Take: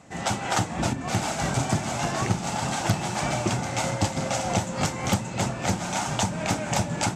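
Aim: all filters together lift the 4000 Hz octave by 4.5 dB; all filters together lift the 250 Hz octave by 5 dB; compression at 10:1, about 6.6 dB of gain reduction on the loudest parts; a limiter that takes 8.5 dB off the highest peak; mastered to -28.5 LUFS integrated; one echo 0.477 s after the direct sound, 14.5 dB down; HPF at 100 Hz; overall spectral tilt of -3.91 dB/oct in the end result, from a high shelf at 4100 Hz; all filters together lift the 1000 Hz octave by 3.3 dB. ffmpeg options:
-af "highpass=100,equalizer=f=250:t=o:g=7,equalizer=f=1k:t=o:g=3.5,equalizer=f=4k:t=o:g=3.5,highshelf=f=4.1k:g=3.5,acompressor=threshold=-22dB:ratio=10,alimiter=limit=-19dB:level=0:latency=1,aecho=1:1:477:0.188,volume=0.5dB"

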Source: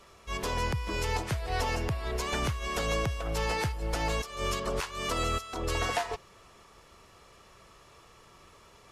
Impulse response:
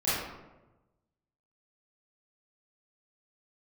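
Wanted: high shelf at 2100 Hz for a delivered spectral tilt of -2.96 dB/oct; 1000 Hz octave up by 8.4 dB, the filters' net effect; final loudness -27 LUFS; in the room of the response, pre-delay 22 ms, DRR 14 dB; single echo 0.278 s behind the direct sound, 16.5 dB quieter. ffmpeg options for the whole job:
-filter_complex "[0:a]equalizer=f=1k:t=o:g=8.5,highshelf=f=2.1k:g=7,aecho=1:1:278:0.15,asplit=2[a][b];[1:a]atrim=start_sample=2205,adelay=22[c];[b][c]afir=irnorm=-1:irlink=0,volume=-25dB[d];[a][d]amix=inputs=2:normalize=0,volume=-0.5dB"

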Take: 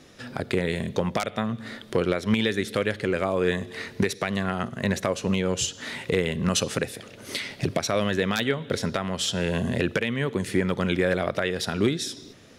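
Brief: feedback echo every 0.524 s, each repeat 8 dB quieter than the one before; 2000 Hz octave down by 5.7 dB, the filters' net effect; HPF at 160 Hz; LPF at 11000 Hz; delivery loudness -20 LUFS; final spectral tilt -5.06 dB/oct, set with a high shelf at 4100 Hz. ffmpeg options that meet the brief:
-af "highpass=160,lowpass=11k,equalizer=f=2k:t=o:g=-6,highshelf=f=4.1k:g=-5,aecho=1:1:524|1048|1572|2096|2620:0.398|0.159|0.0637|0.0255|0.0102,volume=8dB"

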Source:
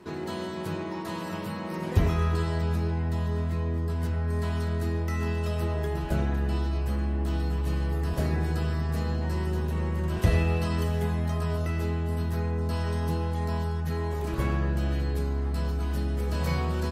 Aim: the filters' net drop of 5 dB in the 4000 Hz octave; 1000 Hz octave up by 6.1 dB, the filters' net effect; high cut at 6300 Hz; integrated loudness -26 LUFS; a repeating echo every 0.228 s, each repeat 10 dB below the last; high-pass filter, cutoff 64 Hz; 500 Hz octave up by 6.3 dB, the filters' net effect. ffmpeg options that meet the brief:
-af "highpass=64,lowpass=6.3k,equalizer=f=500:t=o:g=7,equalizer=f=1k:t=o:g=5.5,equalizer=f=4k:t=o:g=-6.5,aecho=1:1:228|456|684|912:0.316|0.101|0.0324|0.0104,volume=2dB"

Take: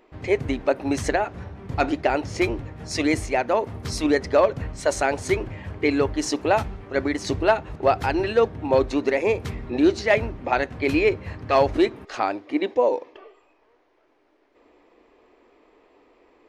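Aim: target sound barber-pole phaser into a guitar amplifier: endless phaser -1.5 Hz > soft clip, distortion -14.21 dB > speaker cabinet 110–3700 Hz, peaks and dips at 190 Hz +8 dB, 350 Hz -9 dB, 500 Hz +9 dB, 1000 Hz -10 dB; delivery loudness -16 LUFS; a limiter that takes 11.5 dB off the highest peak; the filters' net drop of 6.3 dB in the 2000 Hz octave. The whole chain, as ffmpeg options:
-filter_complex "[0:a]equalizer=f=2k:t=o:g=-7.5,alimiter=limit=-19.5dB:level=0:latency=1,asplit=2[a][b];[b]afreqshift=-1.5[c];[a][c]amix=inputs=2:normalize=1,asoftclip=threshold=-27dB,highpass=110,equalizer=f=190:t=q:w=4:g=8,equalizer=f=350:t=q:w=4:g=-9,equalizer=f=500:t=q:w=4:g=9,equalizer=f=1k:t=q:w=4:g=-10,lowpass=f=3.7k:w=0.5412,lowpass=f=3.7k:w=1.3066,volume=19.5dB"

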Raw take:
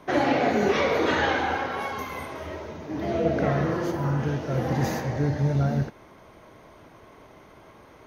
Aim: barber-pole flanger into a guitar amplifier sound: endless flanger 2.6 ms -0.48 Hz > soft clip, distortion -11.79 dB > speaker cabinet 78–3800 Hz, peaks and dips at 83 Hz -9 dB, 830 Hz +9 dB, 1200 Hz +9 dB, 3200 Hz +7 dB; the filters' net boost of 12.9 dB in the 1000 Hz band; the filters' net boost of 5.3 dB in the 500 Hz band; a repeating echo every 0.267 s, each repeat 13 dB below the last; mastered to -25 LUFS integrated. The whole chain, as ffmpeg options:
-filter_complex "[0:a]equalizer=f=500:t=o:g=3.5,equalizer=f=1k:t=o:g=5.5,aecho=1:1:267|534|801:0.224|0.0493|0.0108,asplit=2[a][b];[b]adelay=2.6,afreqshift=-0.48[c];[a][c]amix=inputs=2:normalize=1,asoftclip=threshold=-22dB,highpass=78,equalizer=f=83:t=q:w=4:g=-9,equalizer=f=830:t=q:w=4:g=9,equalizer=f=1.2k:t=q:w=4:g=9,equalizer=f=3.2k:t=q:w=4:g=7,lowpass=f=3.8k:w=0.5412,lowpass=f=3.8k:w=1.3066"

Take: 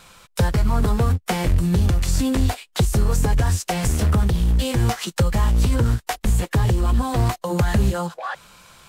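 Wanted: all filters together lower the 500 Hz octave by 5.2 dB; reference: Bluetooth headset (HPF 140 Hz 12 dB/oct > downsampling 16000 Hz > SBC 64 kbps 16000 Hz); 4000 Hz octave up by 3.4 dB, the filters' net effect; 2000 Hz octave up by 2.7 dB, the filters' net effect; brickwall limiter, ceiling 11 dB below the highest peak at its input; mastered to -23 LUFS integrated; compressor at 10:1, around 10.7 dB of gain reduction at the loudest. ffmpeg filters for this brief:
-af "equalizer=f=500:t=o:g=-6.5,equalizer=f=2k:t=o:g=3,equalizer=f=4k:t=o:g=3.5,acompressor=threshold=-25dB:ratio=10,alimiter=limit=-21.5dB:level=0:latency=1,highpass=140,aresample=16000,aresample=44100,volume=12dB" -ar 16000 -c:a sbc -b:a 64k

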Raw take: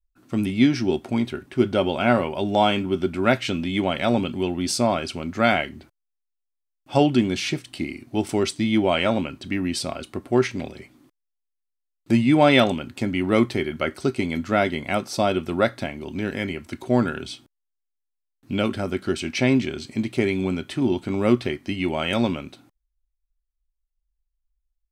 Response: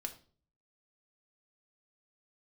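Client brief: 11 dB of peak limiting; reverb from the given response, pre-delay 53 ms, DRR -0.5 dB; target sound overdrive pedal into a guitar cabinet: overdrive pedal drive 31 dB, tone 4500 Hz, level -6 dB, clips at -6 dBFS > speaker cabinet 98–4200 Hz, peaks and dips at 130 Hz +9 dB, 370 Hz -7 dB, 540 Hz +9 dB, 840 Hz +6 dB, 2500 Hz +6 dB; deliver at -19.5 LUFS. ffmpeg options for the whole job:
-filter_complex "[0:a]alimiter=limit=-14dB:level=0:latency=1,asplit=2[a][b];[1:a]atrim=start_sample=2205,adelay=53[c];[b][c]afir=irnorm=-1:irlink=0,volume=2dB[d];[a][d]amix=inputs=2:normalize=0,asplit=2[e][f];[f]highpass=f=720:p=1,volume=31dB,asoftclip=type=tanh:threshold=-6dB[g];[e][g]amix=inputs=2:normalize=0,lowpass=f=4.5k:p=1,volume=-6dB,highpass=98,equalizer=f=130:t=q:w=4:g=9,equalizer=f=370:t=q:w=4:g=-7,equalizer=f=540:t=q:w=4:g=9,equalizer=f=840:t=q:w=4:g=6,equalizer=f=2.5k:t=q:w=4:g=6,lowpass=f=4.2k:w=0.5412,lowpass=f=4.2k:w=1.3066,volume=-7.5dB"

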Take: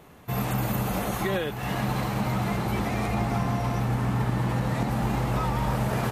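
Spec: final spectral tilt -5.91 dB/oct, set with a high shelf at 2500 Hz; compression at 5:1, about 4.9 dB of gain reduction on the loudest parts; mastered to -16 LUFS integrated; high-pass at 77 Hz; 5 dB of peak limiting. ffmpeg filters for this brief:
-af "highpass=77,highshelf=f=2.5k:g=-9,acompressor=threshold=-28dB:ratio=5,volume=18dB,alimiter=limit=-7dB:level=0:latency=1"

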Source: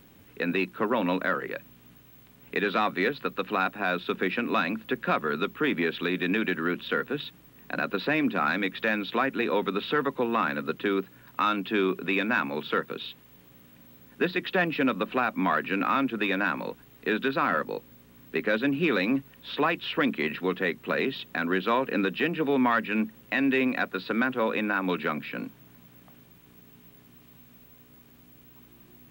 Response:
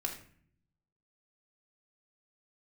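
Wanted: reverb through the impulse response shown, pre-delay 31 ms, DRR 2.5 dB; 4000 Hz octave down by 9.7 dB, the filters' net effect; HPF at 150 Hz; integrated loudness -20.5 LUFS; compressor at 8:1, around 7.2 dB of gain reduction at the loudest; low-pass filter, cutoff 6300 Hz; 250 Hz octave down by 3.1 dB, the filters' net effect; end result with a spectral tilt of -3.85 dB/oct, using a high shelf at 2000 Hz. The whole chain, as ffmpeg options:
-filter_complex "[0:a]highpass=150,lowpass=6.3k,equalizer=f=250:t=o:g=-3,highshelf=f=2k:g=-4.5,equalizer=f=4k:t=o:g=-7.5,acompressor=threshold=-30dB:ratio=8,asplit=2[a][b];[1:a]atrim=start_sample=2205,adelay=31[c];[b][c]afir=irnorm=-1:irlink=0,volume=-4.5dB[d];[a][d]amix=inputs=2:normalize=0,volume=13dB"

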